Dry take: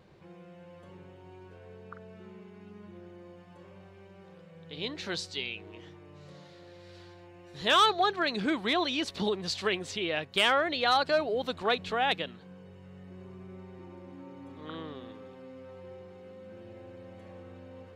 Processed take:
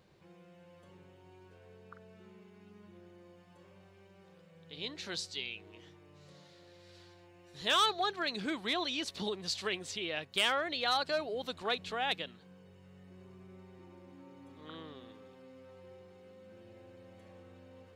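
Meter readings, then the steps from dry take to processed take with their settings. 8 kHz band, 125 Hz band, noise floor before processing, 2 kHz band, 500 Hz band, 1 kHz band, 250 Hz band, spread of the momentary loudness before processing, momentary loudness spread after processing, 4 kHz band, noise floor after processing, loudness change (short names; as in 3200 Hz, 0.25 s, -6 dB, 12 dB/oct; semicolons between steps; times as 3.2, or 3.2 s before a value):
-0.5 dB, -7.5 dB, -53 dBFS, -5.5 dB, -7.5 dB, -7.0 dB, -7.5 dB, 23 LU, 18 LU, -3.5 dB, -60 dBFS, -5.0 dB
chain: high shelf 3500 Hz +8.5 dB; gain -7.5 dB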